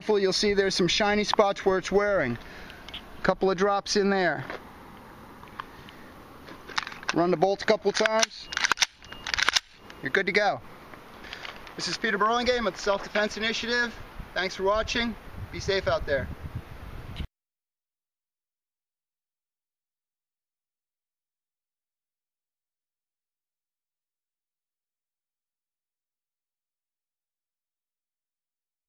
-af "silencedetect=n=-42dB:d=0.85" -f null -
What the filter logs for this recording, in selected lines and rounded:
silence_start: 17.25
silence_end: 28.88 | silence_duration: 11.63